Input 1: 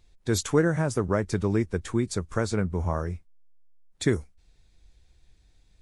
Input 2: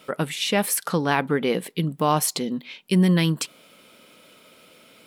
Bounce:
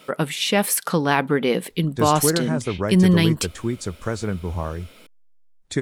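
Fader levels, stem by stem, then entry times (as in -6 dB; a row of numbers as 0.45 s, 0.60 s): +0.5 dB, +2.5 dB; 1.70 s, 0.00 s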